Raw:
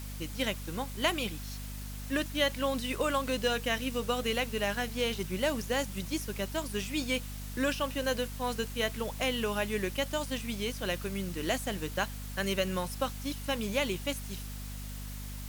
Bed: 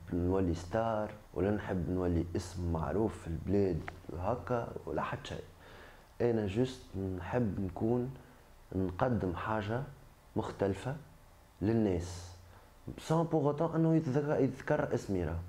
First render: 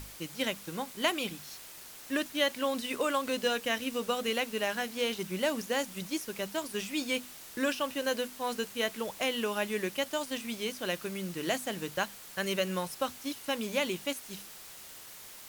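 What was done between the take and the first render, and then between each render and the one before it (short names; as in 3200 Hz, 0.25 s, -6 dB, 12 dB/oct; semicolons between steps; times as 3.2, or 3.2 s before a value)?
notches 50/100/150/200/250 Hz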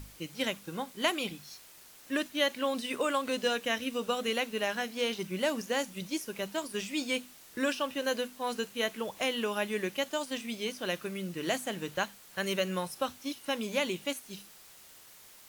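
noise print and reduce 6 dB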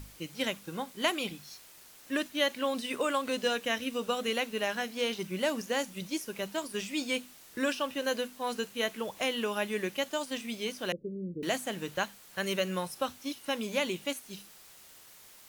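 10.92–11.43 steep low-pass 530 Hz 72 dB/oct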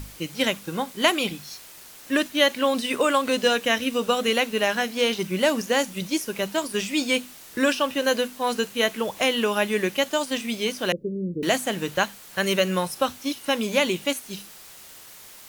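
gain +9 dB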